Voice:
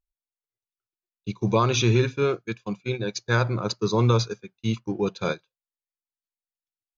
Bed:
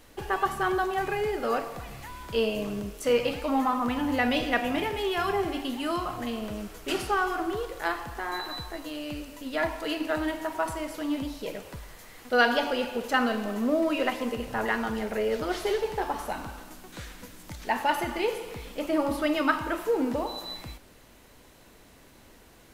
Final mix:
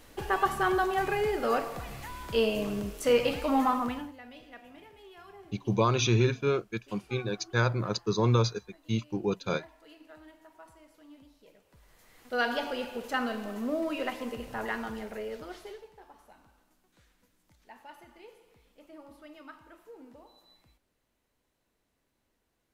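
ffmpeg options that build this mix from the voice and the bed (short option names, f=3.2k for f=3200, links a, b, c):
-filter_complex "[0:a]adelay=4250,volume=-4dB[a];[1:a]volume=17.5dB,afade=t=out:st=3.7:d=0.43:silence=0.0668344,afade=t=in:st=11.68:d=0.85:silence=0.133352,afade=t=out:st=14.77:d=1.13:silence=0.125893[b];[a][b]amix=inputs=2:normalize=0"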